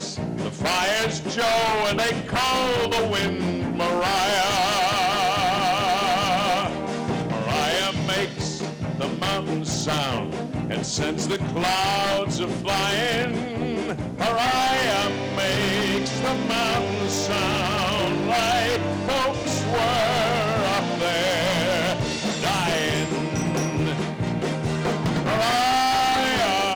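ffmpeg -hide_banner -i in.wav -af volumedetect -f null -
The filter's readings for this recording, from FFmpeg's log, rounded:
mean_volume: -23.0 dB
max_volume: -14.3 dB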